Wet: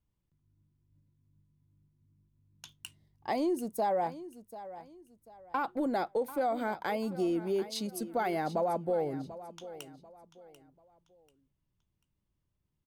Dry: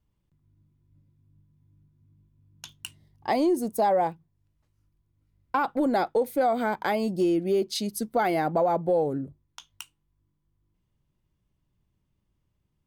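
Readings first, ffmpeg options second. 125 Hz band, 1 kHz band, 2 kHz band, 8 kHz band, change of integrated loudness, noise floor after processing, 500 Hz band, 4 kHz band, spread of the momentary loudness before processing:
-7.0 dB, -7.0 dB, -7.0 dB, -7.0 dB, -7.0 dB, -81 dBFS, -7.0 dB, -7.0 dB, 17 LU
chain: -af "aecho=1:1:740|1480|2220:0.178|0.0569|0.0182,volume=-7dB"

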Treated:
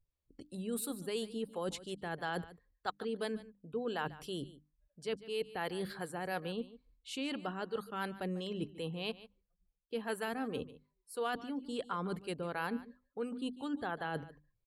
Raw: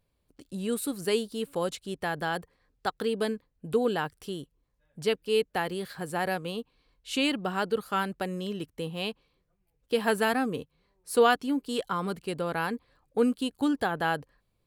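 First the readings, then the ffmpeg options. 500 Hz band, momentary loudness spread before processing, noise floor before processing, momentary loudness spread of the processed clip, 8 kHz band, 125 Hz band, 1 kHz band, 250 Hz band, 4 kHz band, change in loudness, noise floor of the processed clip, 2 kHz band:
-10.5 dB, 10 LU, -75 dBFS, 7 LU, -8.0 dB, -6.5 dB, -10.0 dB, -9.0 dB, -9.5 dB, -10.0 dB, -83 dBFS, -10.0 dB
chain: -filter_complex "[0:a]areverse,acompressor=threshold=-36dB:ratio=5,areverse,bandreject=f=50:t=h:w=6,bandreject=f=100:t=h:w=6,bandreject=f=150:t=h:w=6,bandreject=f=200:t=h:w=6,bandreject=f=250:t=h:w=6,bandreject=f=300:t=h:w=6,acrossover=split=450[a][b];[a]aeval=exprs='val(0)*(1-0.5/2+0.5/2*cos(2*PI*2.9*n/s))':c=same[c];[b]aeval=exprs='val(0)*(1-0.5/2-0.5/2*cos(2*PI*2.9*n/s))':c=same[d];[c][d]amix=inputs=2:normalize=0,afftdn=nr=19:nf=-63,aecho=1:1:146:0.141,volume=3dB"

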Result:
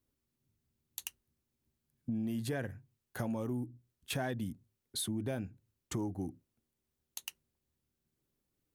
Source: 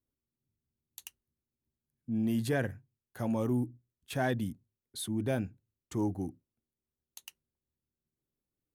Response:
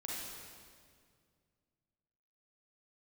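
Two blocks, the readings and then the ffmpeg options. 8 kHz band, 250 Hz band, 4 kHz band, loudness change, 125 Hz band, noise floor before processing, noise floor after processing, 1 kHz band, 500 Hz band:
+2.5 dB, -5.0 dB, +2.0 dB, -5.5 dB, -4.5 dB, under -85 dBFS, under -85 dBFS, -5.5 dB, -6.0 dB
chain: -af "acompressor=threshold=-40dB:ratio=6,volume=6dB"

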